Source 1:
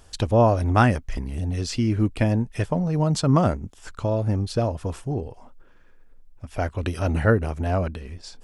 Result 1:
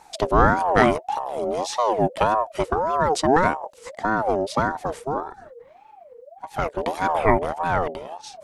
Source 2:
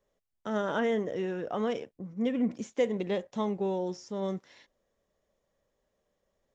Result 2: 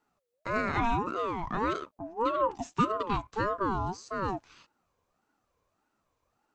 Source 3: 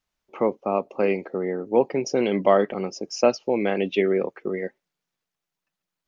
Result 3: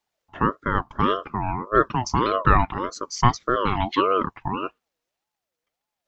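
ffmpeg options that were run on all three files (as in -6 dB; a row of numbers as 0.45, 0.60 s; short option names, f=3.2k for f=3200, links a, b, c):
-af "aeval=exprs='val(0)*sin(2*PI*670*n/s+670*0.3/1.7*sin(2*PI*1.7*n/s))':c=same,volume=3.5dB"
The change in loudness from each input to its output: +1.0, +1.0, +0.5 LU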